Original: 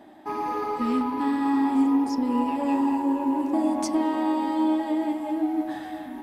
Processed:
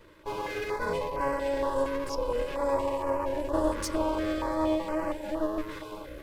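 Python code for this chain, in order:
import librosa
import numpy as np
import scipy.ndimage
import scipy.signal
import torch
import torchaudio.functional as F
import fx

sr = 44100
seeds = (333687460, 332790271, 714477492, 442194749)

y = fx.lower_of_two(x, sr, delay_ms=2.0)
y = fx.filter_held_notch(y, sr, hz=4.3, low_hz=750.0, high_hz=3600.0)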